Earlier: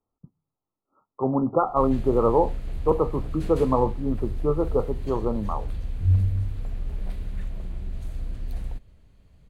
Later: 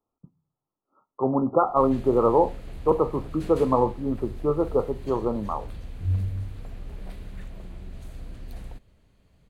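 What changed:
speech: send +10.5 dB
master: add low-shelf EQ 110 Hz −9 dB

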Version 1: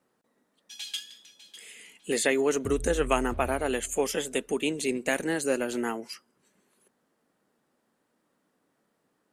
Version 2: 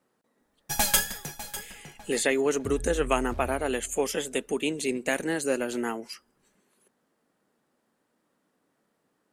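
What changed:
first sound: remove four-pole ladder band-pass 3,600 Hz, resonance 60%
second sound: remove high-frequency loss of the air 290 metres

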